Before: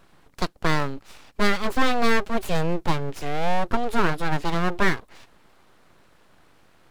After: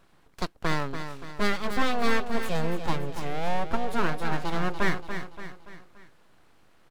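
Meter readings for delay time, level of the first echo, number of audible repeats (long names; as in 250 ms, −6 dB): 287 ms, −9.0 dB, 4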